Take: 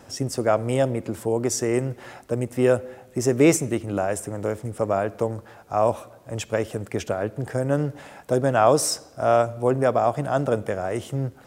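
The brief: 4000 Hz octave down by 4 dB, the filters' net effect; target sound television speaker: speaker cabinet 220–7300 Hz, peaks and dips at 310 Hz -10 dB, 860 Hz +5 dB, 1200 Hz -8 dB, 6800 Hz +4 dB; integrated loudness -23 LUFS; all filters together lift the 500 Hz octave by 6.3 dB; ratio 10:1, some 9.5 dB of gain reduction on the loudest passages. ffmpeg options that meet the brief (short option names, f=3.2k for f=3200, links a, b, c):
-af "equalizer=f=500:t=o:g=8.5,equalizer=f=4k:t=o:g=-7,acompressor=threshold=-16dB:ratio=10,highpass=f=220:w=0.5412,highpass=f=220:w=1.3066,equalizer=f=310:t=q:w=4:g=-10,equalizer=f=860:t=q:w=4:g=5,equalizer=f=1.2k:t=q:w=4:g=-8,equalizer=f=6.8k:t=q:w=4:g=4,lowpass=f=7.3k:w=0.5412,lowpass=f=7.3k:w=1.3066,volume=1.5dB"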